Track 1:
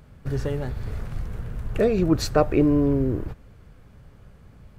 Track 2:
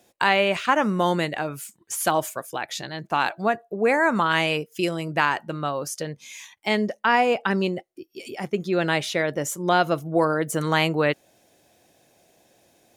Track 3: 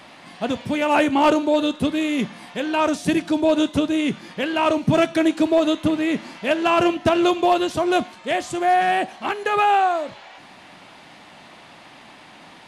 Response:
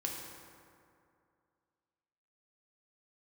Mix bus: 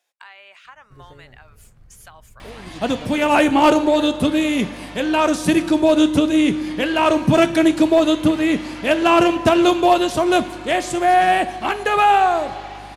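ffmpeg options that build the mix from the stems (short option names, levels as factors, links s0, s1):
-filter_complex "[0:a]adelay=650,volume=0.106[s0];[1:a]highpass=1100,highshelf=f=5300:g=-8,acompressor=threshold=0.0112:ratio=2.5,volume=0.447[s1];[2:a]highshelf=f=9000:g=7,aeval=exprs='val(0)+0.00631*(sin(2*PI*50*n/s)+sin(2*PI*2*50*n/s)/2+sin(2*PI*3*50*n/s)/3+sin(2*PI*4*50*n/s)/4+sin(2*PI*5*50*n/s)/5)':c=same,adelay=2400,volume=1.12,asplit=2[s2][s3];[s3]volume=0.299[s4];[3:a]atrim=start_sample=2205[s5];[s4][s5]afir=irnorm=-1:irlink=0[s6];[s0][s1][s2][s6]amix=inputs=4:normalize=0"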